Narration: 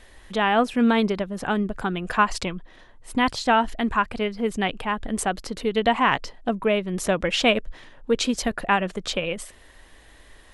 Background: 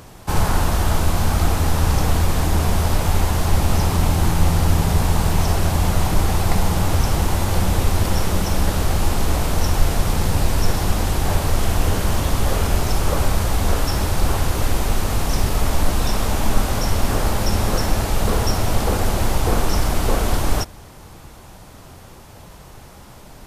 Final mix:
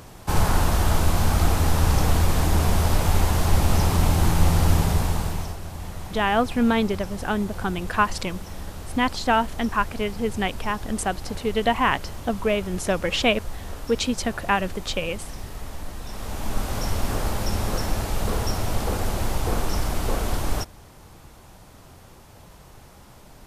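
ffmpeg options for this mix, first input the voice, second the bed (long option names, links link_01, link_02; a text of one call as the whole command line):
ffmpeg -i stem1.wav -i stem2.wav -filter_complex "[0:a]adelay=5800,volume=-1dB[link_01];[1:a]volume=8.5dB,afade=type=out:start_time=4.74:duration=0.83:silence=0.188365,afade=type=in:start_time=16.05:duration=0.78:silence=0.298538[link_02];[link_01][link_02]amix=inputs=2:normalize=0" out.wav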